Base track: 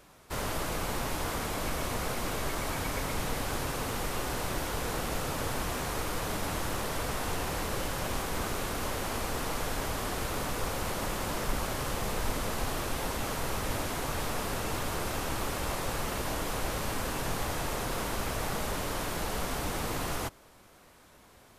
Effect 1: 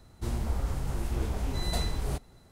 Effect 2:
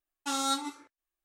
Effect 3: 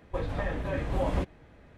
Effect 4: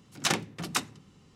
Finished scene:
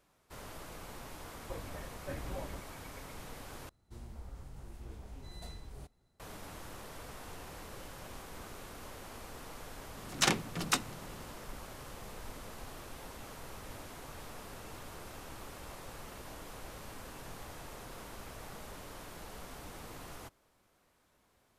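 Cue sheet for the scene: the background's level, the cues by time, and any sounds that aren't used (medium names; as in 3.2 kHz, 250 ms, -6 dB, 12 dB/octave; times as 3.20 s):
base track -14.5 dB
1.36 s: add 3 -9.5 dB + tremolo saw down 1.4 Hz, depth 90%
3.69 s: replace with 1 -17 dB
9.97 s: add 4 -1 dB + upward compressor, threshold -41 dBFS
not used: 2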